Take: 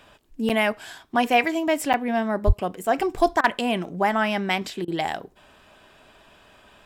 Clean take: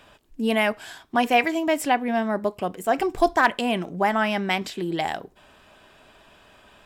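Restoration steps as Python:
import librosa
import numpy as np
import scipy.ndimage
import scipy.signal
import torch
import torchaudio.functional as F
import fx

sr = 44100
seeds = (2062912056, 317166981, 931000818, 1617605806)

y = fx.highpass(x, sr, hz=140.0, slope=24, at=(2.46, 2.58), fade=0.02)
y = fx.fix_interpolate(y, sr, at_s=(0.49, 1.93), length_ms=8.0)
y = fx.fix_interpolate(y, sr, at_s=(3.41, 4.85), length_ms=28.0)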